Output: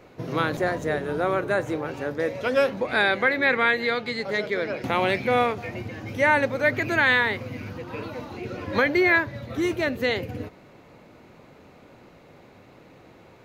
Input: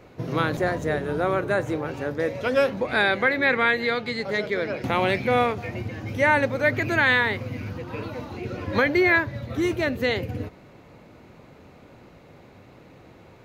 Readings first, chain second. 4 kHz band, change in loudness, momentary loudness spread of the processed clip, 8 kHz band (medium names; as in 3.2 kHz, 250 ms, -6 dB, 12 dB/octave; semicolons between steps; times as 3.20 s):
0.0 dB, 0.0 dB, 15 LU, no reading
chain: peaking EQ 61 Hz -5.5 dB 2.8 oct